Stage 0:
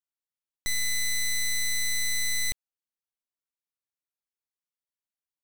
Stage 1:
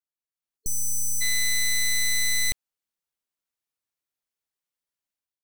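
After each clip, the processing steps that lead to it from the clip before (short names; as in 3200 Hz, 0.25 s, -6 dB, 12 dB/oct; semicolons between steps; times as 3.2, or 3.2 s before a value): spectral delete 0.57–1.21, 450–4300 Hz; AGC gain up to 10 dB; gain -6 dB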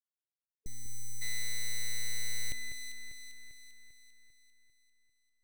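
Wiener smoothing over 41 samples; echo with dull and thin repeats by turns 0.198 s, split 2400 Hz, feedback 72%, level -8 dB; gain -8.5 dB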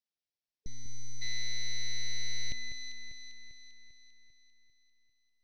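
EQ curve 230 Hz 0 dB, 430 Hz -4 dB, 690 Hz -1 dB, 1300 Hz -15 dB, 1900 Hz -3 dB, 5600 Hz +3 dB, 8200 Hz -29 dB; gain +2 dB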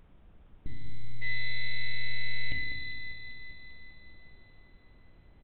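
FDN reverb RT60 1.1 s, low-frequency decay 1.55×, high-frequency decay 0.9×, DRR 1 dB; added noise brown -59 dBFS; downsampling 8000 Hz; gain +4.5 dB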